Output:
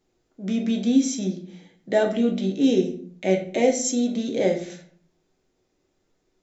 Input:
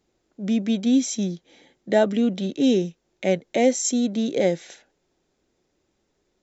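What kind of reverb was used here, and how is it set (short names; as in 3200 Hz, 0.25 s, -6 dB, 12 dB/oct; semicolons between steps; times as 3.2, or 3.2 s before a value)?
shoebox room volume 53 m³, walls mixed, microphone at 0.53 m; gain -3 dB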